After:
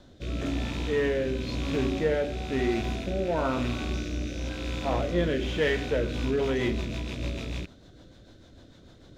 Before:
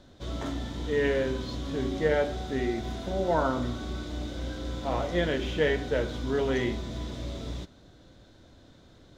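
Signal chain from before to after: rattling part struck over -42 dBFS, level -31 dBFS; 3.93–4.49 bell 5900 Hz +10 dB 0.26 oct; in parallel at -4 dB: hard clip -27 dBFS, distortion -9 dB; on the sum: rotary speaker horn 1 Hz, later 6.7 Hz, at 5.8

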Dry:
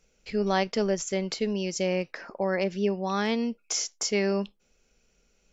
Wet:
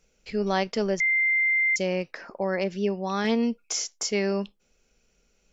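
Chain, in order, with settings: 1–1.76 bleep 2090 Hz -19.5 dBFS; 3.24–3.64 comb 4.2 ms, depth 58%

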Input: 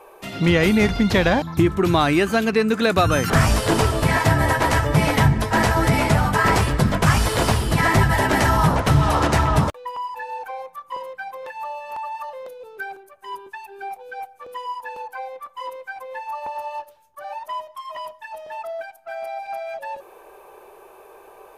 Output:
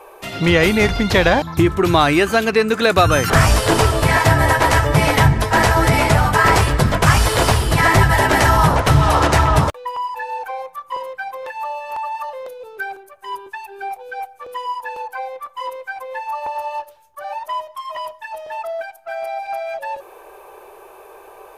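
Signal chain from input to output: bell 210 Hz -6.5 dB 1 oct; gain +5 dB

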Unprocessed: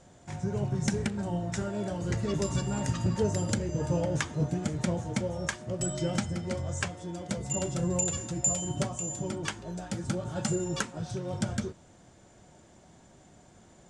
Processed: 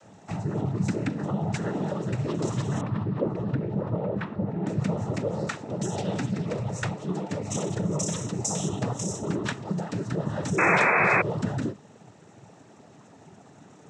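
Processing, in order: high shelf 3100 Hz -8 dB; in parallel at -1 dB: negative-ratio compressor -35 dBFS; on the sum: noise vocoder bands 12; 2.81–4.67 air absorption 420 m; 10.58–11.22 painted sound noise 350–2600 Hz -21 dBFS

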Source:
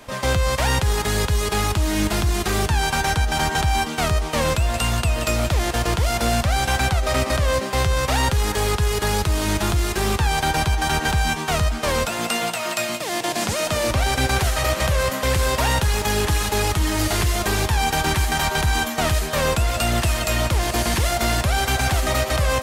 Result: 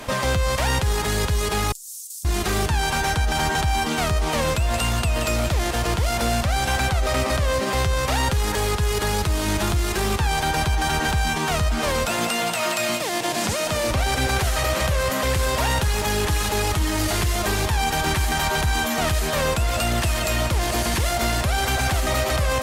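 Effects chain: limiter -22.5 dBFS, peak gain reduction 11 dB; 1.72–2.25 inverse Chebyshev high-pass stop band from 1200 Hz, stop band 80 dB; gain +8 dB; Opus 128 kbps 48000 Hz

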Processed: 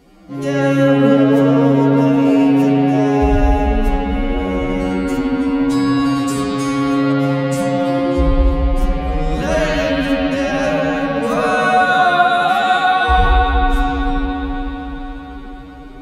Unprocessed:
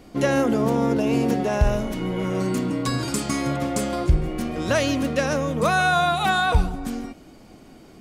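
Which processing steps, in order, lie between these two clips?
spring tank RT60 2.7 s, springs 31/36 ms, chirp 20 ms, DRR -8.5 dB; time stretch by phase-locked vocoder 2×; gain -2 dB

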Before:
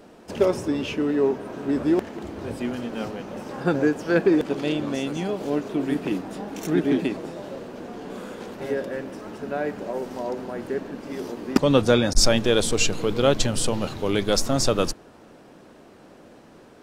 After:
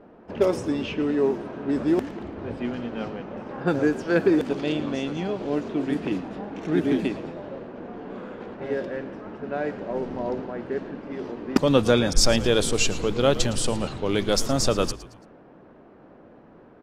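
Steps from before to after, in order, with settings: low-pass opened by the level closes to 1500 Hz, open at -17 dBFS; 9.91–10.41 low shelf 200 Hz +10.5 dB; frequency-shifting echo 0.112 s, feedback 38%, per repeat -64 Hz, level -16 dB; gain -1 dB

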